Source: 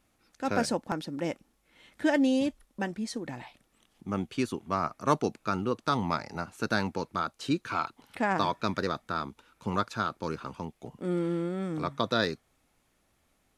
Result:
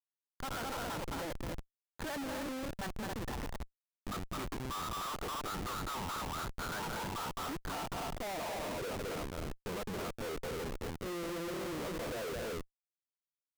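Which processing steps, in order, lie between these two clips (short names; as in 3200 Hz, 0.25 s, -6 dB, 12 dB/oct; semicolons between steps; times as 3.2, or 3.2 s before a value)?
G.711 law mismatch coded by A; 6.64–7.81 de-hum 209 Hz, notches 33; in parallel at -0.5 dB: compressor 6:1, threshold -30 dBFS, peak gain reduction 12 dB; on the sum: soft clip -18.5 dBFS, distortion -13 dB; band-pass sweep 1200 Hz -> 490 Hz, 6.51–8.98; on a send: loudspeakers at several distances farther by 73 m -8 dB, 94 m -10 dB; on the sum: careless resampling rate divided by 4×, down filtered, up zero stuff; Schmitt trigger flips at -34.5 dBFS; gain -6.5 dB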